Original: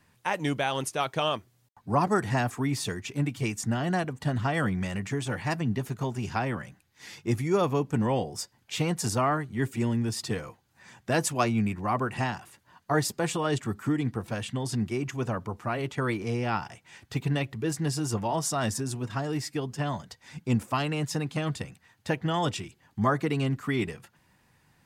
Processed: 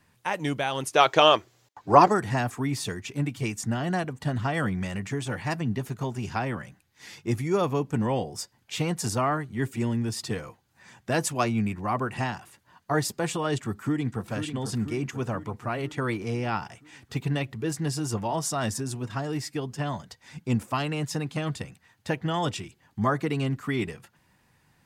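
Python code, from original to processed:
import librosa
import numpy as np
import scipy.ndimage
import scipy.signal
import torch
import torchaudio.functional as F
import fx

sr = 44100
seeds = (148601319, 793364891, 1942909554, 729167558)

y = fx.spec_box(x, sr, start_s=0.95, length_s=1.17, low_hz=280.0, high_hz=7800.0, gain_db=10)
y = fx.echo_throw(y, sr, start_s=13.63, length_s=0.65, ms=490, feedback_pct=60, wet_db=-7.5)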